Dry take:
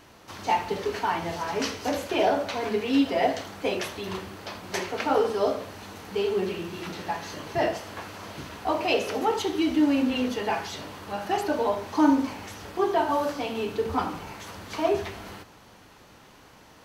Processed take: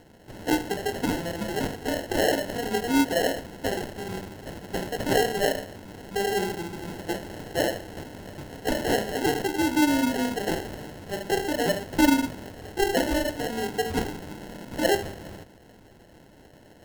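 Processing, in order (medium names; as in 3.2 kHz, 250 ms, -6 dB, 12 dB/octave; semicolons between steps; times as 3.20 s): 14.30–14.95 s: resonant low shelf 150 Hz -11 dB, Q 3; sample-and-hold 37×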